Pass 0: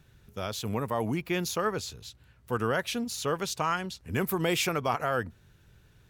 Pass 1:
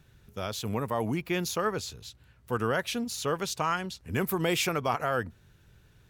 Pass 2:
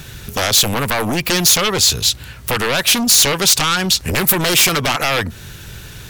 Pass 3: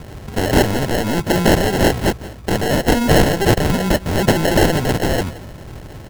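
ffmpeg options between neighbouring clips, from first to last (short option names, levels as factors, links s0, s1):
-af anull
-af "acompressor=threshold=0.02:ratio=5,aeval=exprs='0.0708*sin(PI/2*3.98*val(0)/0.0708)':c=same,highshelf=f=2100:g=10,volume=2.37"
-af "acrusher=samples=37:mix=1:aa=0.000001,aecho=1:1:173:0.141"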